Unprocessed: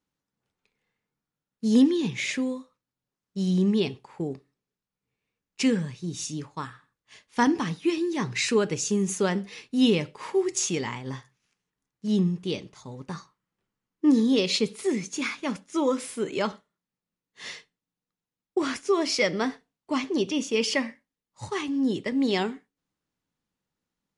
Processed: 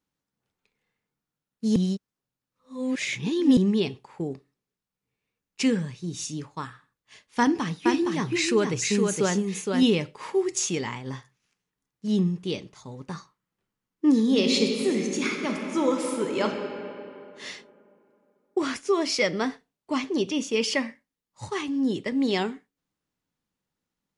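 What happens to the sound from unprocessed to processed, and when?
1.76–3.57 s: reverse
7.39–9.83 s: delay 465 ms -4 dB
14.19–16.44 s: reverb throw, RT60 2.9 s, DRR 2 dB

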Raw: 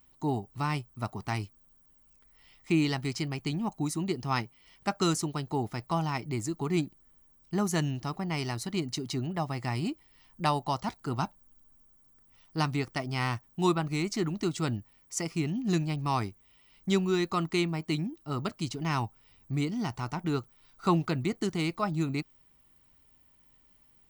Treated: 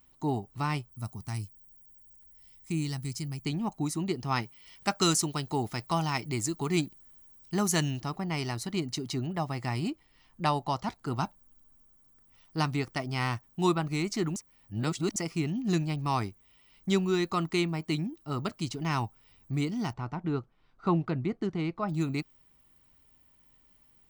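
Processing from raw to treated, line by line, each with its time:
0.91–3.46 s: FFT filter 140 Hz 0 dB, 440 Hz -12 dB, 3.1 kHz -10 dB, 9.9 kHz +7 dB
4.42–8.01 s: treble shelf 2.2 kHz +7.5 dB
9.90–11.07 s: treble shelf 9.1 kHz -7 dB
14.36–15.16 s: reverse
19.93–21.89 s: tape spacing loss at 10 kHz 27 dB

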